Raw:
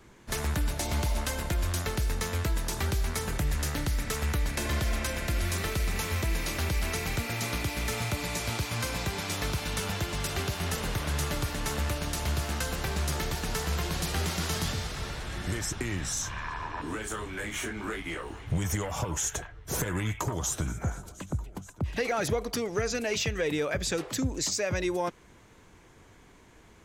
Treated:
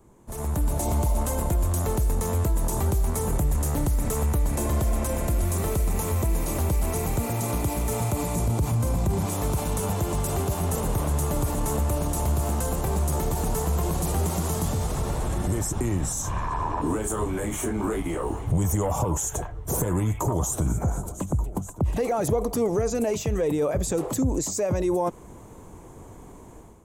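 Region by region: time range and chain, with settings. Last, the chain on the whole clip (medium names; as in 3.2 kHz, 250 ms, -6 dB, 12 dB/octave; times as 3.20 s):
8.35–9.26 s: bass shelf 360 Hz +11.5 dB + de-hum 146.1 Hz, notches 28
whole clip: peak limiter -28 dBFS; level rider gain up to 12 dB; high-order bell 2.8 kHz -14.5 dB 2.3 oct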